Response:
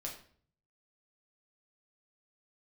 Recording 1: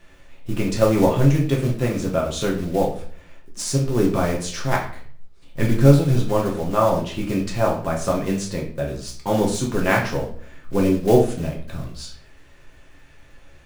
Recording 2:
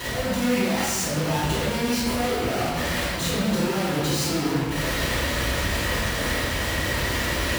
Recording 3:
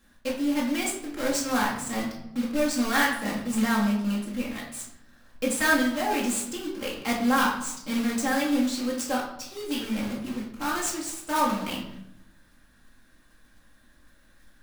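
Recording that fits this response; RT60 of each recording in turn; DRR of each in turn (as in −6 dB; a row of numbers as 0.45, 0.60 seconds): 1; 0.50, 1.3, 0.80 seconds; −2.0, −12.0, −4.0 decibels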